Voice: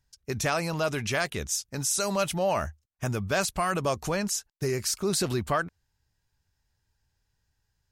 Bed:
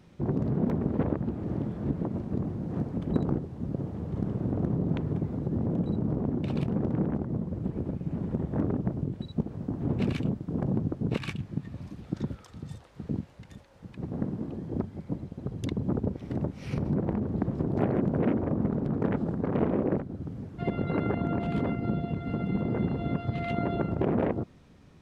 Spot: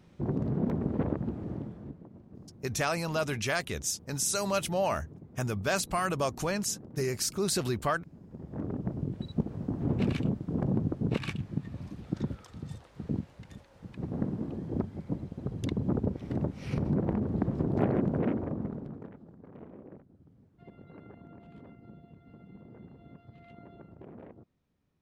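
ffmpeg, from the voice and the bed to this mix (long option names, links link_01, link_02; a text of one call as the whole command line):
ffmpeg -i stem1.wav -i stem2.wav -filter_complex "[0:a]adelay=2350,volume=-2.5dB[link_01];[1:a]volume=16dB,afade=type=out:start_time=1.29:duration=0.7:silence=0.149624,afade=type=in:start_time=8.28:duration=0.97:silence=0.11885,afade=type=out:start_time=17.9:duration=1.22:silence=0.0841395[link_02];[link_01][link_02]amix=inputs=2:normalize=0" out.wav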